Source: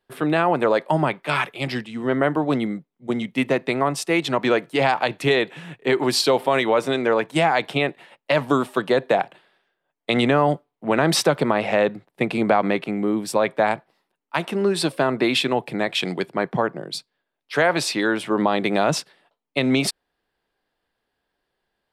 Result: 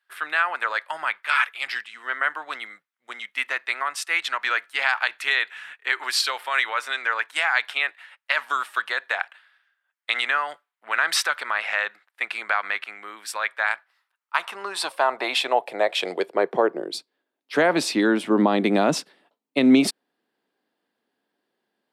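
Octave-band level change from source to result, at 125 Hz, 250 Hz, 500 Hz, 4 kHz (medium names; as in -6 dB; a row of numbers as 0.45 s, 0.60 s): under -10 dB, -3.5 dB, -7.0 dB, -1.0 dB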